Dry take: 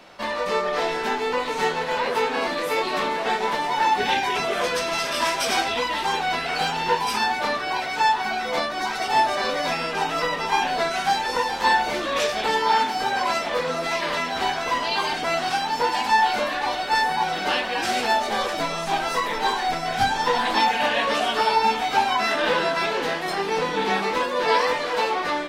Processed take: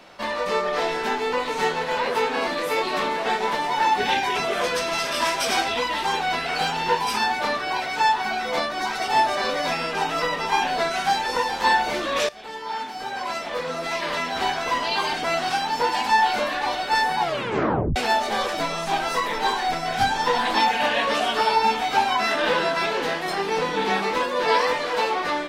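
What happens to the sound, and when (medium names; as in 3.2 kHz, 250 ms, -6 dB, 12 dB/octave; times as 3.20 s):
12.29–14.42 s: fade in, from -18.5 dB
17.20 s: tape stop 0.76 s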